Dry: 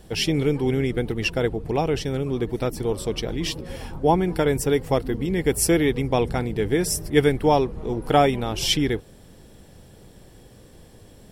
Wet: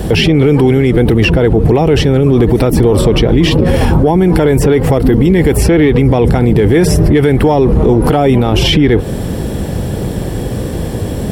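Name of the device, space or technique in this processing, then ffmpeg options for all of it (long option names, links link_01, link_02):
mastering chain: -filter_complex "[0:a]highpass=41,equalizer=frequency=5500:width_type=o:width=1.5:gain=-3.5,acrossover=split=610|3800[link_01][link_02][link_03];[link_01]acompressor=threshold=-25dB:ratio=4[link_04];[link_02]acompressor=threshold=-28dB:ratio=4[link_05];[link_03]acompressor=threshold=-48dB:ratio=4[link_06];[link_04][link_05][link_06]amix=inputs=3:normalize=0,acompressor=threshold=-29dB:ratio=2,asoftclip=type=tanh:threshold=-17.5dB,tiltshelf=frequency=700:gain=3.5,alimiter=level_in=30dB:limit=-1dB:release=50:level=0:latency=1,volume=-1dB"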